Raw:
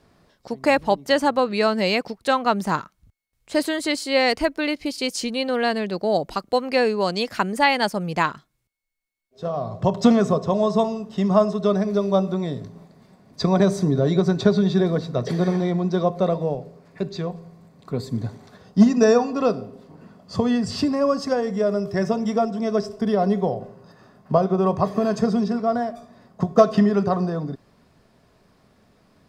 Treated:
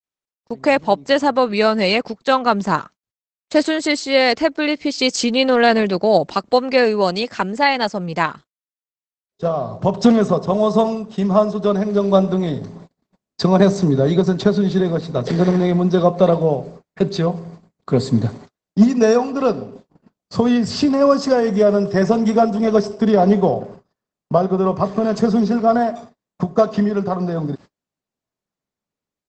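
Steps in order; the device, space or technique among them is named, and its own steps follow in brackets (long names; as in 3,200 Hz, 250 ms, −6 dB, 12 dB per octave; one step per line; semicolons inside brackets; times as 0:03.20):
video call (high-pass filter 110 Hz 12 dB per octave; automatic gain control gain up to 14.5 dB; noise gate −35 dBFS, range −43 dB; level −1 dB; Opus 12 kbit/s 48,000 Hz)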